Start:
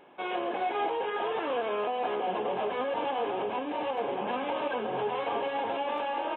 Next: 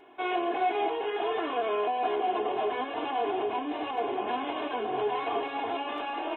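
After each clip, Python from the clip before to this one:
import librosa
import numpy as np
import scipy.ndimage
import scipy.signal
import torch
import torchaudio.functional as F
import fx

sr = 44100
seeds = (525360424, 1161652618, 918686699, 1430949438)

y = x + 0.91 * np.pad(x, (int(2.8 * sr / 1000.0), 0))[:len(x)]
y = y * 10.0 ** (-1.5 / 20.0)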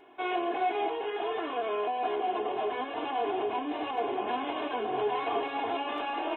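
y = fx.rider(x, sr, range_db=10, speed_s=2.0)
y = y * 10.0 ** (-1.5 / 20.0)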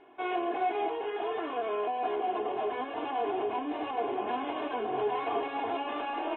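y = fx.air_absorb(x, sr, metres=220.0)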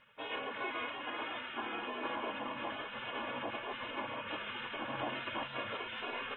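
y = x + 10.0 ** (-8.0 / 20.0) * np.pad(x, (int(567 * sr / 1000.0), 0))[:len(x)]
y = fx.spec_gate(y, sr, threshold_db=-15, keep='weak')
y = y * 10.0 ** (3.0 / 20.0)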